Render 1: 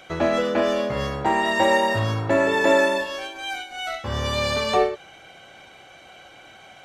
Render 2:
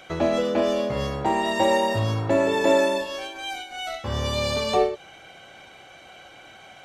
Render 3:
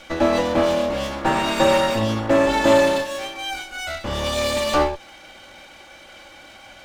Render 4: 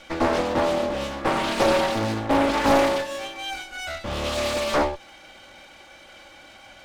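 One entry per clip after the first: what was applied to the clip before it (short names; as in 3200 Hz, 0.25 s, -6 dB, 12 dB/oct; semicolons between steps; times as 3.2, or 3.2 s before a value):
dynamic EQ 1600 Hz, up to -8 dB, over -38 dBFS, Q 1.3
minimum comb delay 3.5 ms; gain +4.5 dB
Doppler distortion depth 0.84 ms; gain -3 dB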